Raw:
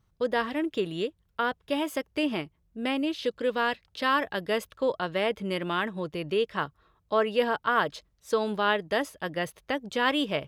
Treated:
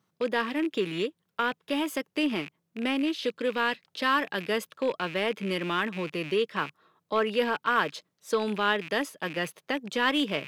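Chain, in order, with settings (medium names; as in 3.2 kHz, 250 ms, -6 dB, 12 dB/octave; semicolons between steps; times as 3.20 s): rattle on loud lows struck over -51 dBFS, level -31 dBFS; high-pass 160 Hz 24 dB/octave; in parallel at -12 dB: hard clipper -24.5 dBFS, distortion -8 dB; on the sum: dynamic bell 660 Hz, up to -6 dB, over -38 dBFS, Q 1.8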